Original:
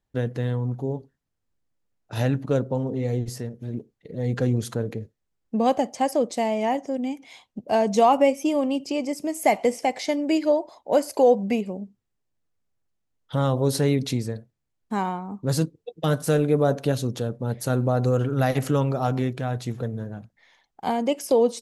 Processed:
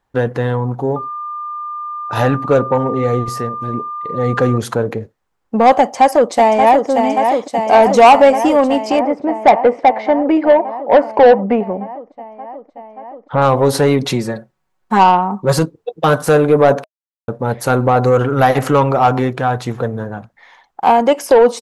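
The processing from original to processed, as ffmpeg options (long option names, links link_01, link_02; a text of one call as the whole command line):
ffmpeg -i in.wav -filter_complex "[0:a]asettb=1/sr,asplit=3[link_01][link_02][link_03];[link_01]atrim=end=0.964[link_04];[link_02]atrim=start=0.96:end=4.58,asetpts=PTS-STARTPTS,afade=type=in:duration=0.004:curve=qsin,afade=type=out:start_time=3.616:duration=0.004:curve=qsin,aeval=exprs='val(0)+0.00891*sin(2*PI*1200*n/s)':channel_layout=same[link_05];[link_03]atrim=start=4.576[link_06];[link_04][link_05]acrossfade=duration=0.004:curve1=hsin:curve2=qsin[link_07];[link_07][link_06]acrossfade=duration=0.004:curve1=qsin:curve2=hsin,asplit=2[link_08][link_09];[link_09]afade=type=in:start_time=5.8:duration=0.01,afade=type=out:start_time=6.89:duration=0.01,aecho=0:1:580|1160|1740|2320|2900|3480|4060|4640|5220|5800|6380|6960:0.446684|0.357347|0.285877|0.228702|0.182962|0.146369|0.117095|0.0936763|0.0749411|0.0599529|0.0479623|0.0383698[link_10];[link_08][link_10]amix=inputs=2:normalize=0,asettb=1/sr,asplit=3[link_11][link_12][link_13];[link_11]atrim=end=8.994[link_14];[link_12]atrim=start=8.99:end=13.42,asetpts=PTS-STARTPTS,afade=type=in:duration=0.004:curve=qsin,afade=type=out:start_time=4.426:duration=0.004:curve=qsin,lowpass=1600[link_15];[link_13]atrim=start=13.416[link_16];[link_14][link_15]acrossfade=duration=0.004:curve1=hsin:curve2=qsin[link_17];[link_17][link_16]acrossfade=duration=0.004:curve1=qsin:curve2=hsin,asettb=1/sr,asplit=3[link_18][link_19][link_20];[link_18]atrim=end=14.044[link_21];[link_19]atrim=start=14.04:end=15.59,asetpts=PTS-STARTPTS,afade=type=in:duration=0.004:curve=qsin,afade=type=out:start_time=1.546:duration=0.004:curve=qsin,aecho=1:1:5.4:0.65,atrim=end_sample=68355[link_22];[link_20]atrim=start=15.586[link_23];[link_21][link_22]acrossfade=duration=0.004:curve1=hsin:curve2=qsin[link_24];[link_24][link_23]acrossfade=duration=0.004:curve1=qsin:curve2=hsin,asplit=3[link_25][link_26][link_27];[link_25]atrim=end=16.84,asetpts=PTS-STARTPTS,afade=type=out:start_time=16.836:duration=0.004:curve=hsin[link_28];[link_26]atrim=start=16.84:end=17.28,asetpts=PTS-STARTPTS,volume=0[link_29];[link_27]atrim=start=17.28,asetpts=PTS-STARTPTS,afade=type=in:duration=0.004:curve=hsin[link_30];[link_28][link_29][link_30]concat=n=3:v=0:a=1,equalizer=frequency=1000:width=0.58:gain=14,bandreject=frequency=630:width=15,acontrast=66,volume=-1dB" out.wav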